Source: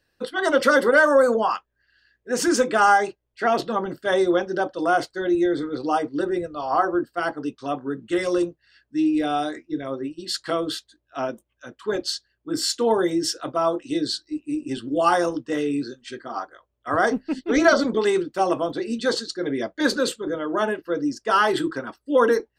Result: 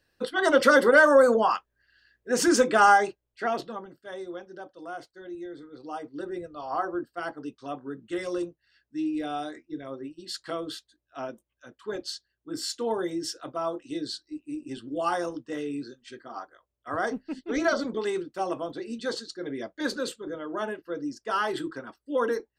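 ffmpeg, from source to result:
-af "volume=8.5dB,afade=t=out:st=2.85:d=0.7:silence=0.446684,afade=t=out:st=3.55:d=0.35:silence=0.316228,afade=t=in:st=5.7:d=0.85:silence=0.334965"

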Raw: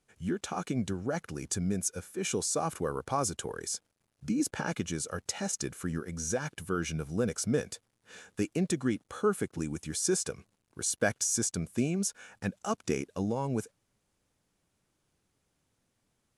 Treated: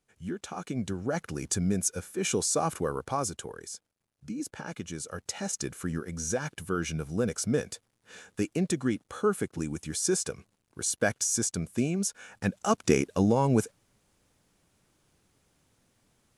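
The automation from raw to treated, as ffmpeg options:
-af "volume=17.5dB,afade=t=in:st=0.61:d=0.68:silence=0.473151,afade=t=out:st=2.66:d=1.04:silence=0.334965,afade=t=in:st=4.66:d=1.07:silence=0.421697,afade=t=in:st=12.15:d=0.8:silence=0.473151"

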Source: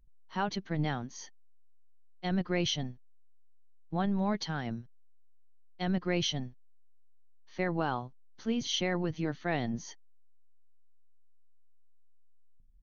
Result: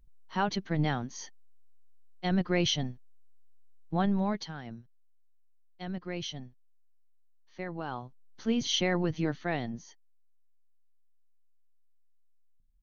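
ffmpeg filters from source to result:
-af "volume=12.5dB,afade=t=out:st=4.1:d=0.43:silence=0.334965,afade=t=in:st=7.83:d=0.67:silence=0.334965,afade=t=out:st=9.25:d=0.62:silence=0.298538"

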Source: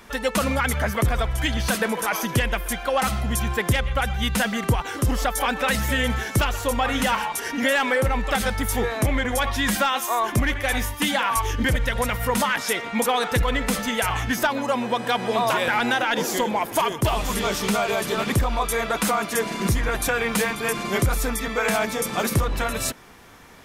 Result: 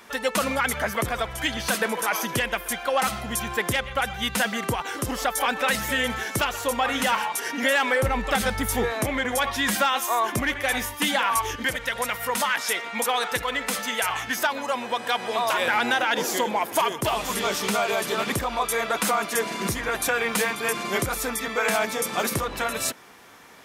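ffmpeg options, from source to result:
-af "asetnsamples=n=441:p=0,asendcmd='8.03 highpass f 80;8.92 highpass f 260;11.56 highpass f 710;15.59 highpass f 320',highpass=f=320:p=1"

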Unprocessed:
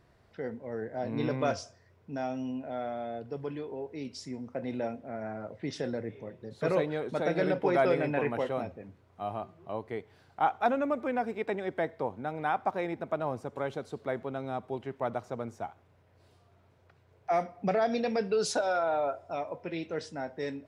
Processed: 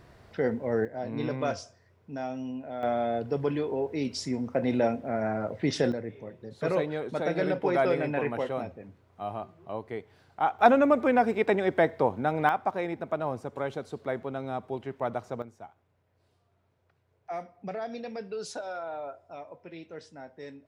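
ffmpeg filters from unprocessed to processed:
-af "asetnsamples=n=441:p=0,asendcmd='0.85 volume volume -0.5dB;2.83 volume volume 8.5dB;5.92 volume volume 0.5dB;10.59 volume volume 8dB;12.49 volume volume 1.5dB;15.42 volume volume -8dB',volume=9.5dB"

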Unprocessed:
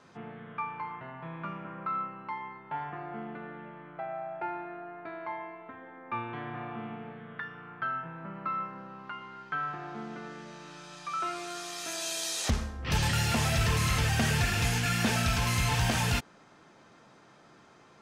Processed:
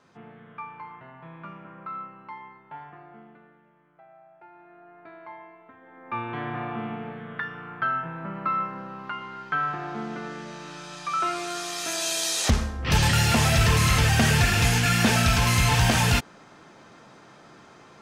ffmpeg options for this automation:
-af "volume=19.5dB,afade=t=out:st=2.39:d=1.23:silence=0.237137,afade=t=in:st=4.5:d=0.56:silence=0.298538,afade=t=in:st=5.81:d=0.62:silence=0.251189"

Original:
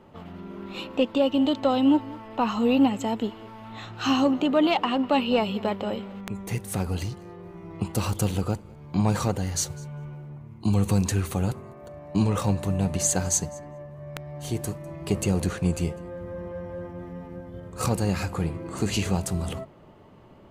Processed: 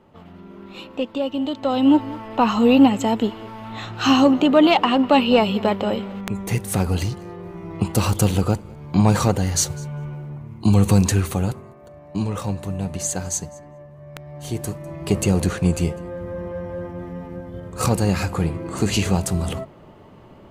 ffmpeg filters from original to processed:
-af "volume=14dB,afade=t=in:st=1.58:d=0.48:silence=0.354813,afade=t=out:st=11.04:d=0.74:silence=0.375837,afade=t=in:st=14.09:d=1.07:silence=0.446684"

